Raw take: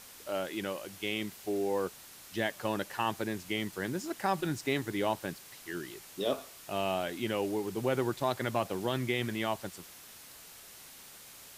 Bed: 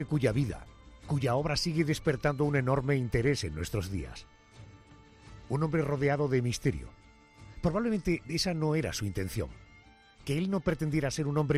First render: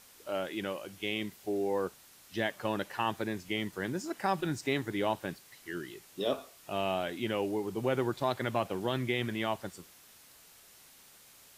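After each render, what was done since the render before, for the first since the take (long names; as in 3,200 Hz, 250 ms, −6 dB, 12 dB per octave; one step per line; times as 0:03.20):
noise reduction from a noise print 6 dB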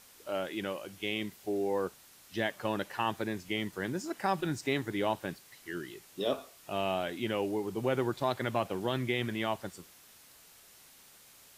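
no processing that can be heard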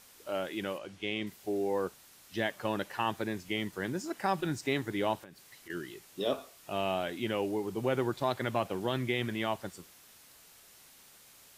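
0:00.78–0:01.27: high-frequency loss of the air 66 metres
0:05.18–0:05.70: downward compressor 10 to 1, threshold −46 dBFS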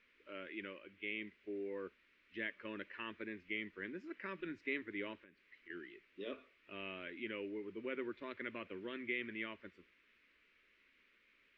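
transistor ladder low-pass 2,600 Hz, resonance 55%
phaser with its sweep stopped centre 320 Hz, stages 4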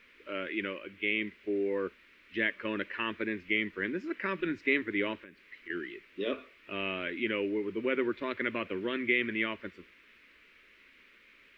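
level +12 dB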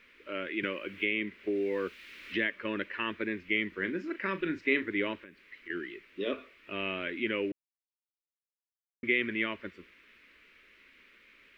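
0:00.63–0:02.54: multiband upward and downward compressor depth 70%
0:03.68–0:04.86: double-tracking delay 37 ms −11.5 dB
0:07.52–0:09.03: silence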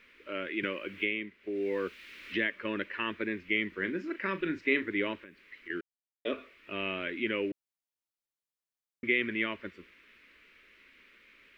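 0:01.03–0:01.69: duck −8.5 dB, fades 0.28 s
0:05.81–0:06.25: silence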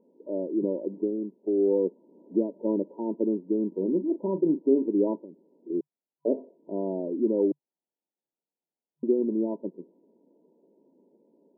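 brick-wall band-pass 140–980 Hz
parametric band 330 Hz +10 dB 2.6 octaves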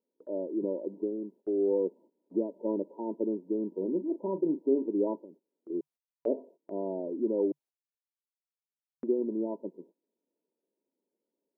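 noise gate −49 dBFS, range −20 dB
low-shelf EQ 320 Hz −10 dB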